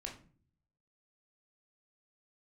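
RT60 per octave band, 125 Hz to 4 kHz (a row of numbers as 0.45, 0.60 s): 0.95, 0.75, 0.50, 0.40, 0.35, 0.30 s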